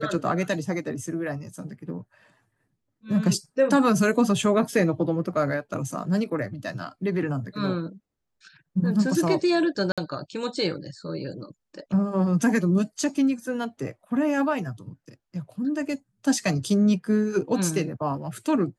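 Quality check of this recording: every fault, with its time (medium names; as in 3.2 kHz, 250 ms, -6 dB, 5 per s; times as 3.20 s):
9.92–9.98 s: dropout 56 ms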